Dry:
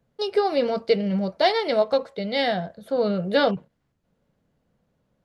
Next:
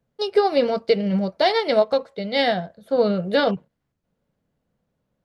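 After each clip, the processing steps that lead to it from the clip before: loudness maximiser +11.5 dB; upward expansion 1.5:1, over -25 dBFS; trim -6 dB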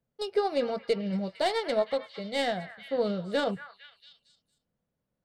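tracing distortion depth 0.029 ms; repeats whose band climbs or falls 228 ms, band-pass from 1.5 kHz, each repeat 0.7 oct, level -9 dB; trim -9 dB

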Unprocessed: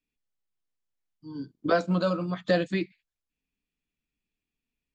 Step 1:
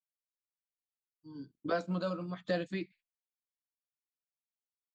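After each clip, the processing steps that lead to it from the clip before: expander -47 dBFS; trim -9 dB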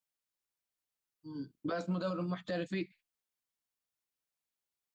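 peak limiter -31 dBFS, peak gain reduction 11 dB; trim +4 dB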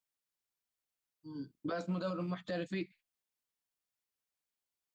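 rattle on loud lows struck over -37 dBFS, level -51 dBFS; trim -1.5 dB

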